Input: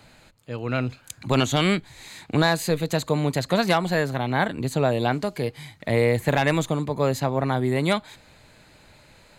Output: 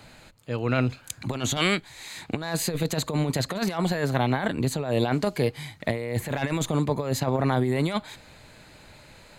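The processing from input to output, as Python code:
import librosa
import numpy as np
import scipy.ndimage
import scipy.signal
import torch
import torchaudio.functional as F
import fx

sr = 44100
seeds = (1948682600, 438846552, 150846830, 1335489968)

y = fx.low_shelf(x, sr, hz=360.0, db=-9.5, at=(1.57, 2.17))
y = fx.over_compress(y, sr, threshold_db=-24.0, ratio=-0.5)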